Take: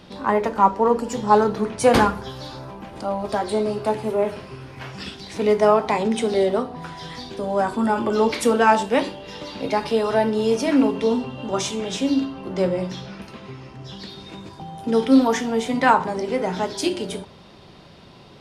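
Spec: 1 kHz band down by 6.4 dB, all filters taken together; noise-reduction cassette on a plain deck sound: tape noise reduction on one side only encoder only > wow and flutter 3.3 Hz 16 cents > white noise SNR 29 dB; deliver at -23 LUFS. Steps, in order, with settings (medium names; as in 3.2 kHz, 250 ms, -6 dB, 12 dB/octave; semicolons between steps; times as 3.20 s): peaking EQ 1 kHz -8 dB; tape noise reduction on one side only encoder only; wow and flutter 3.3 Hz 16 cents; white noise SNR 29 dB; trim +0.5 dB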